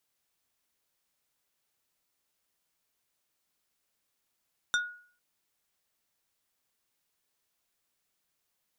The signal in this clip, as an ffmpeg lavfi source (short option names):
-f lavfi -i "aevalsrc='0.075*pow(10,-3*t/0.49)*sin(2*PI*1450*t)+0.0473*pow(10,-3*t/0.163)*sin(2*PI*3625*t)+0.0299*pow(10,-3*t/0.093)*sin(2*PI*5800*t)+0.0188*pow(10,-3*t/0.071)*sin(2*PI*7250*t)+0.0119*pow(10,-3*t/0.052)*sin(2*PI*9425*t)':d=0.45:s=44100"